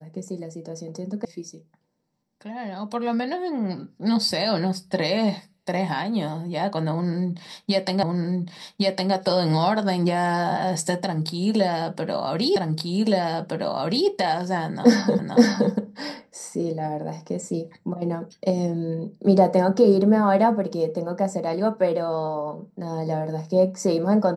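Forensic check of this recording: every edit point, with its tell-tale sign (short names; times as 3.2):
1.25 sound cut off
8.03 repeat of the last 1.11 s
12.56 repeat of the last 1.52 s
15.19 repeat of the last 0.52 s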